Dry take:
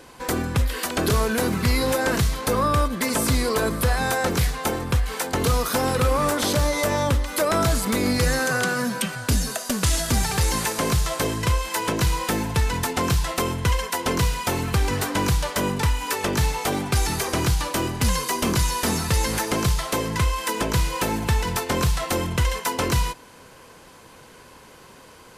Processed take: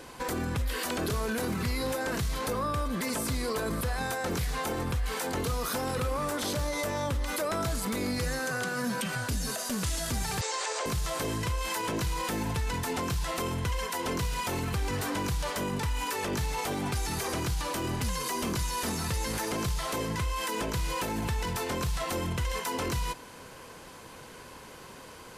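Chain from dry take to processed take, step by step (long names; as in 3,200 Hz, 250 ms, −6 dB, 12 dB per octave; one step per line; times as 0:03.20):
0:10.41–0:10.86: Chebyshev band-pass filter 440–7,900 Hz, order 4
brickwall limiter −23.5 dBFS, peak gain reduction 11.5 dB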